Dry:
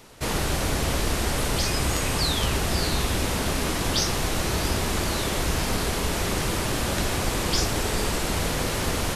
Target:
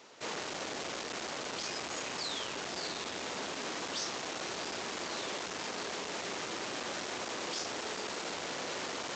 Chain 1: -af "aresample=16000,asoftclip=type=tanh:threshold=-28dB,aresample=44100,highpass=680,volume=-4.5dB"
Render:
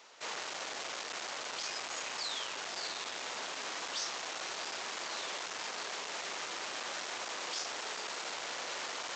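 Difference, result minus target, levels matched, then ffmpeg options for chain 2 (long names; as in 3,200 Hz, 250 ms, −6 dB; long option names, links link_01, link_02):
250 Hz band −10.0 dB
-af "aresample=16000,asoftclip=type=tanh:threshold=-28dB,aresample=44100,highpass=320,volume=-4.5dB"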